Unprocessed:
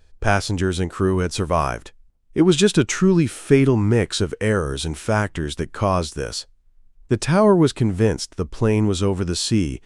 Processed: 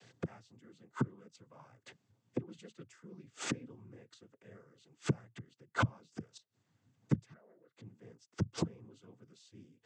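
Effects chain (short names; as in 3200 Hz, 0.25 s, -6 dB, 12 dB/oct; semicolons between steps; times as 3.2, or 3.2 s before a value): flipped gate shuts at -18 dBFS, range -41 dB; 7.33–7.75 double band-pass 880 Hz, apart 1.5 oct; noise vocoder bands 16; gain +3.5 dB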